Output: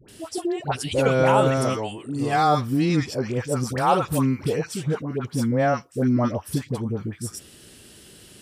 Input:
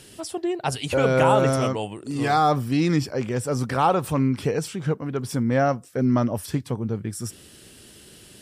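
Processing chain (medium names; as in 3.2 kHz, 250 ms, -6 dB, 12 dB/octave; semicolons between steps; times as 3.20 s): 3.48–4.41 s: treble shelf 7.1 kHz +7 dB; phase dispersion highs, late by 86 ms, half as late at 920 Hz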